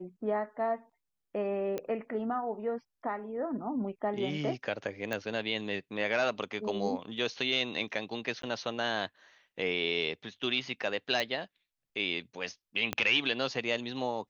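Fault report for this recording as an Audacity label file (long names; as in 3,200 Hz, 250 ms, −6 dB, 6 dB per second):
1.780000	1.780000	click −21 dBFS
5.130000	5.130000	click −19 dBFS
8.420000	8.430000	drop-out 13 ms
11.200000	11.200000	click −18 dBFS
12.930000	12.930000	click −15 dBFS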